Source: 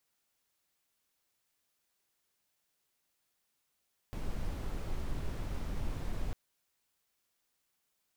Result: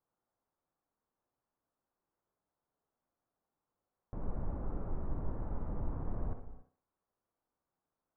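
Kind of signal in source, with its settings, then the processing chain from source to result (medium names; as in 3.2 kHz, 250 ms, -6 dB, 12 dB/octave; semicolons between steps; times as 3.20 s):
noise brown, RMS -35 dBFS 2.20 s
low-pass 1.2 kHz 24 dB/octave; on a send: thinning echo 64 ms, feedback 36%, high-pass 160 Hz, level -7 dB; on the sum: gated-style reverb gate 310 ms flat, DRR 10.5 dB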